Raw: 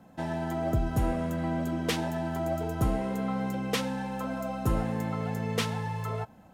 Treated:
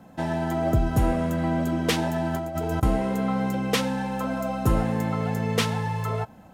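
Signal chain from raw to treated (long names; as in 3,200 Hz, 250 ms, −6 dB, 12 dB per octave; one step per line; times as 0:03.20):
0:02.34–0:02.83: compressor whose output falls as the input rises −33 dBFS, ratio −0.5
level +5.5 dB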